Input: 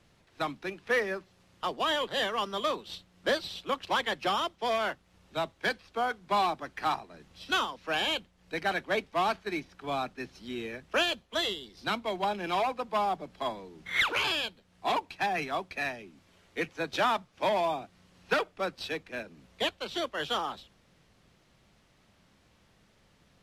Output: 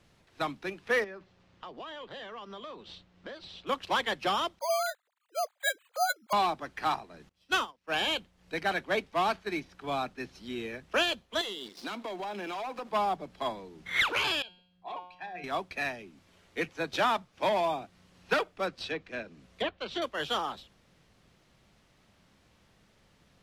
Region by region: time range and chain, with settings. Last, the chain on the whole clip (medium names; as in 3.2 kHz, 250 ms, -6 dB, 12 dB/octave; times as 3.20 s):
1.04–3.67 s: compression 5:1, threshold -40 dBFS + distance through air 120 m
4.59–6.33 s: formants replaced by sine waves + careless resampling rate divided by 8×, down filtered, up hold
7.29–7.92 s: peaking EQ 3.9 kHz -4.5 dB 0.35 oct + waveshaping leveller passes 1 + upward expansion 2.5:1, over -39 dBFS
11.41–12.91 s: high-pass 210 Hz 24 dB/octave + waveshaping leveller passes 2 + compression 12:1, threshold -34 dBFS
14.42–15.44 s: resonances exaggerated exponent 1.5 + feedback comb 180 Hz, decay 0.65 s, mix 80%
18.67–20.02 s: low-pass that closes with the level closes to 2.1 kHz, closed at -28 dBFS + band-stop 880 Hz, Q 13
whole clip: none